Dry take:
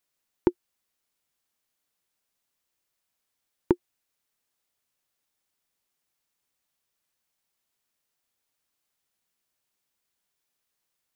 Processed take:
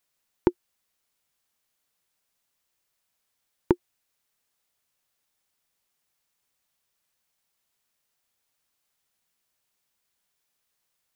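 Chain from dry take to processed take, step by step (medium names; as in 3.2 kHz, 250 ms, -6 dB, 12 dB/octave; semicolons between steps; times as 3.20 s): peaking EQ 310 Hz -3 dB 0.89 oct; trim +3 dB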